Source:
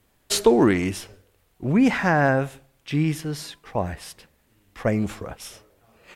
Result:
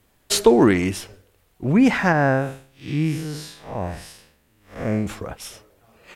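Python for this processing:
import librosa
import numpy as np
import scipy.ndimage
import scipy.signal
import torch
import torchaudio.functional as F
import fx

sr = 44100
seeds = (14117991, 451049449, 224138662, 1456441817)

y = fx.spec_blur(x, sr, span_ms=158.0, at=(2.12, 5.07))
y = y * 10.0 ** (2.5 / 20.0)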